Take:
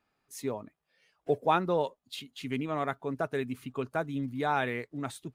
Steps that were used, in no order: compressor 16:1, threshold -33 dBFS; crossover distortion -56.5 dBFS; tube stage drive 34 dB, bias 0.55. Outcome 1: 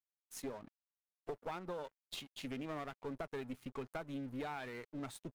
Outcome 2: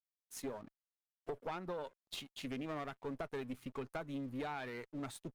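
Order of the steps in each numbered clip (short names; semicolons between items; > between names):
compressor > tube stage > crossover distortion; crossover distortion > compressor > tube stage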